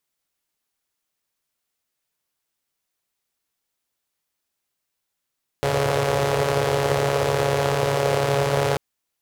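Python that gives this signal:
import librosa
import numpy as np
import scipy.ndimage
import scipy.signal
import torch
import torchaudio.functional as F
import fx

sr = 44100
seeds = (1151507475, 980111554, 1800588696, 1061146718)

y = fx.engine_four(sr, seeds[0], length_s=3.14, rpm=4200, resonances_hz=(120.0, 470.0))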